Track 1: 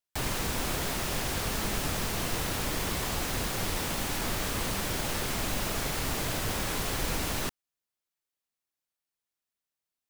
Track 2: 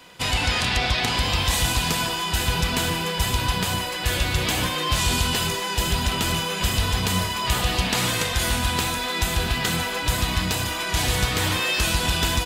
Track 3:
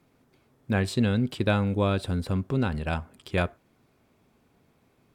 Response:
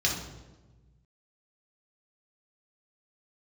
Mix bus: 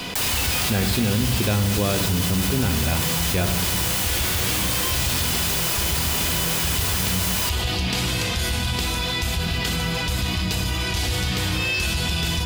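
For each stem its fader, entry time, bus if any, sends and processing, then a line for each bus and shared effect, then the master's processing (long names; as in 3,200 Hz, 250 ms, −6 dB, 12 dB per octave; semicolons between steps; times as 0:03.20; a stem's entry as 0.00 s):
−5.0 dB, 0.00 s, no send, spectral tilt +2.5 dB per octave
−15.0 dB, 0.00 s, send −12 dB, no processing
−3.0 dB, 0.00 s, send −15.5 dB, no processing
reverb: on, RT60 1.2 s, pre-delay 3 ms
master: envelope flattener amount 70%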